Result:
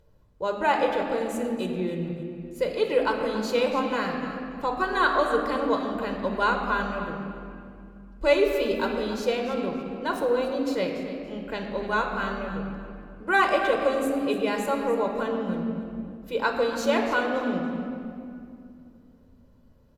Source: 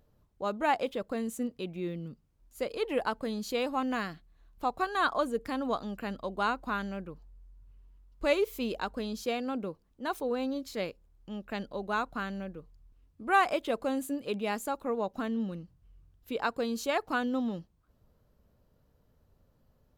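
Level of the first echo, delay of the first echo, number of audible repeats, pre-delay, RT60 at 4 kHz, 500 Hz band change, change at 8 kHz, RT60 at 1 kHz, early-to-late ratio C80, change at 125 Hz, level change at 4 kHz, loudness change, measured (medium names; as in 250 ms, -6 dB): -13.0 dB, 286 ms, 2, 6 ms, 1.6 s, +8.5 dB, +3.0 dB, 2.3 s, 4.5 dB, +6.5 dB, +6.0 dB, +6.5 dB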